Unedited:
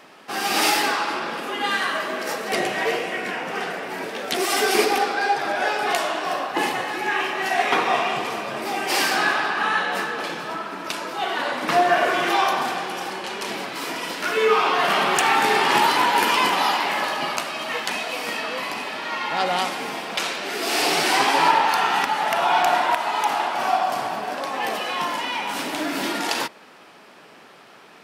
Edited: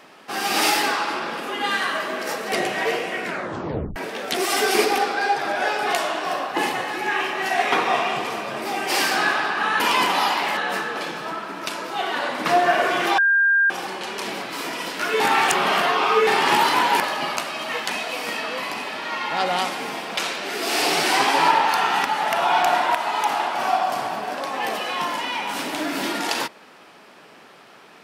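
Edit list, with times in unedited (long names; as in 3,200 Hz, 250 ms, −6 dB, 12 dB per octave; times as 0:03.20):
0:03.25: tape stop 0.71 s
0:12.41–0:12.93: beep over 1,600 Hz −14 dBFS
0:14.43–0:15.50: reverse
0:16.23–0:17.00: move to 0:09.80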